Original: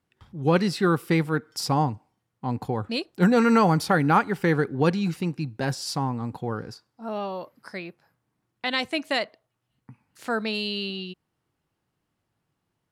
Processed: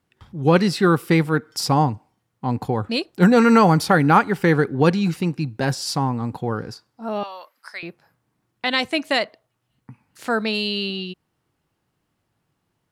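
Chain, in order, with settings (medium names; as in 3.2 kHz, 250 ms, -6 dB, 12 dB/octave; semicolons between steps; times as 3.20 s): 7.23–7.83 s: high-pass 1.1 kHz 12 dB/octave; trim +5 dB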